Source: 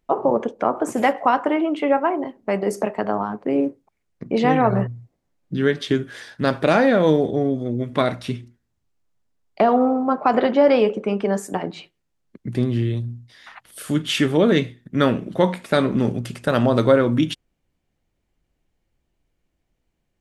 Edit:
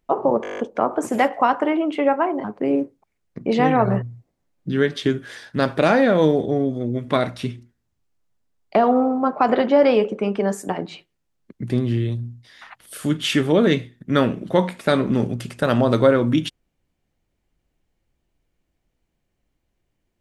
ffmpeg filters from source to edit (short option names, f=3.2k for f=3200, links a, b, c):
-filter_complex "[0:a]asplit=10[a][b][c][d][e][f][g][h][i][j];[a]atrim=end=0.442[k];[b]atrim=start=0.418:end=0.442[l];[c]atrim=start=0.418:end=0.442[m];[d]atrim=start=0.418:end=0.442[n];[e]atrim=start=0.418:end=0.442[o];[f]atrim=start=0.418:end=0.442[p];[g]atrim=start=0.418:end=0.442[q];[h]atrim=start=0.418:end=0.442[r];[i]atrim=start=0.418:end=2.282[s];[j]atrim=start=3.288[t];[k][l]acrossfade=d=0.004:c1=hsin:c2=hsin[u];[u][m]acrossfade=d=0.004:c1=hsin:c2=hsin[v];[v][n]acrossfade=d=0.004:c1=hsin:c2=hsin[w];[w][o]acrossfade=d=0.004:c1=hsin:c2=hsin[x];[x][p]acrossfade=d=0.004:c1=hsin:c2=hsin[y];[y][q]acrossfade=d=0.004:c1=hsin:c2=hsin[z];[z][r]acrossfade=d=0.004:c1=hsin:c2=hsin[aa];[aa][s]acrossfade=d=0.004:c1=hsin:c2=hsin[ab];[ab][t]acrossfade=d=0.004:c1=hsin:c2=hsin"